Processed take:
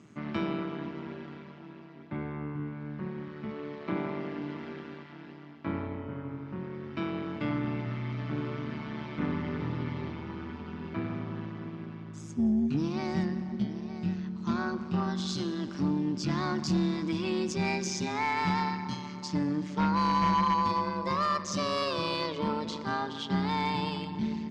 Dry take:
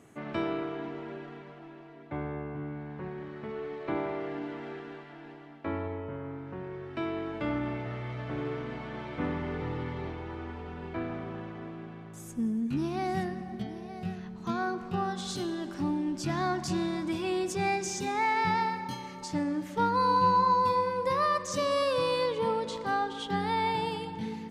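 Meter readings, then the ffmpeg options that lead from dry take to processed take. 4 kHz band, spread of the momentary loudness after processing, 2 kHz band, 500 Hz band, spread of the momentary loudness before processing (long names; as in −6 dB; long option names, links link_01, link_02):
+1.5 dB, 12 LU, −1.0 dB, −4.0 dB, 14 LU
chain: -af "tremolo=f=150:d=0.75,highpass=100,equalizer=frequency=110:width_type=q:width=4:gain=7,equalizer=frequency=200:width_type=q:width=4:gain=9,equalizer=frequency=490:width_type=q:width=4:gain=-9,equalizer=frequency=740:width_type=q:width=4:gain=-8,equalizer=frequency=1700:width_type=q:width=4:gain=-3,equalizer=frequency=5000:width_type=q:width=4:gain=4,lowpass=frequency=6700:width=0.5412,lowpass=frequency=6700:width=1.3066,aeval=exprs='0.141*sin(PI/2*1.58*val(0)/0.141)':channel_layout=same,volume=-3.5dB"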